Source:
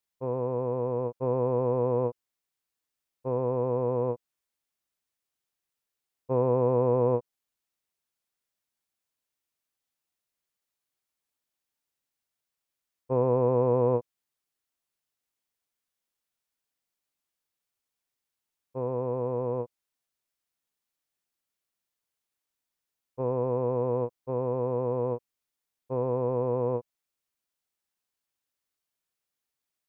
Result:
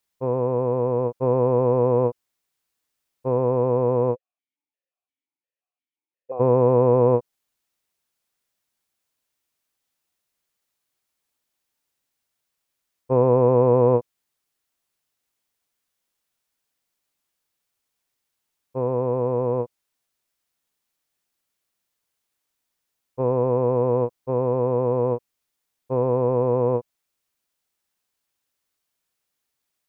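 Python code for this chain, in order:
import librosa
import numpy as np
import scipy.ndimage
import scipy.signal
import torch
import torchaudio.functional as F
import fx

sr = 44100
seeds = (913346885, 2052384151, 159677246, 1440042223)

y = fx.vowel_held(x, sr, hz=5.7, at=(4.14, 6.39), fade=0.02)
y = y * librosa.db_to_amplitude(7.0)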